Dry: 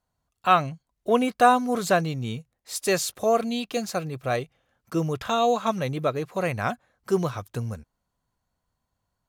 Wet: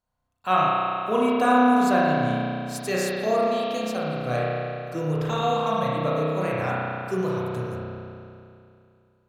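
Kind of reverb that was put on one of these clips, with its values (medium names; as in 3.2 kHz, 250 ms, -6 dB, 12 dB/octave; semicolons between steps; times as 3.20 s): spring tank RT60 2.6 s, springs 32 ms, chirp 25 ms, DRR -6.5 dB; trim -6 dB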